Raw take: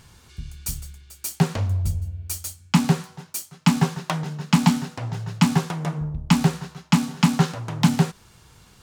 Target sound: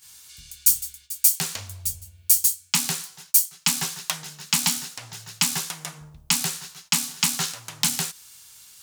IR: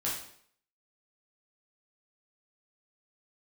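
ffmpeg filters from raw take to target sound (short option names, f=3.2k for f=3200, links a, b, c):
-af "crystalizer=i=7.5:c=0,agate=range=-11dB:threshold=-41dB:ratio=16:detection=peak,tiltshelf=f=820:g=-5.5,volume=-12.5dB"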